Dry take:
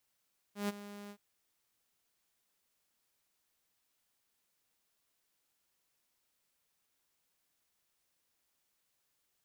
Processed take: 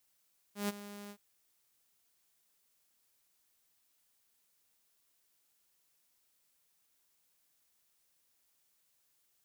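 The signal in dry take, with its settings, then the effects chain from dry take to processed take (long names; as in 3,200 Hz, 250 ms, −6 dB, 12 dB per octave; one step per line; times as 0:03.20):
note with an ADSR envelope saw 204 Hz, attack 137 ms, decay 25 ms, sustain −15 dB, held 0.55 s, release 71 ms −28.5 dBFS
high-shelf EQ 4,900 Hz +6.5 dB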